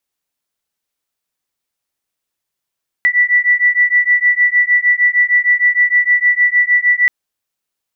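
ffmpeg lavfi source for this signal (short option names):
-f lavfi -i "aevalsrc='0.237*(sin(2*PI*1960*t)+sin(2*PI*1966.5*t))':d=4.03:s=44100"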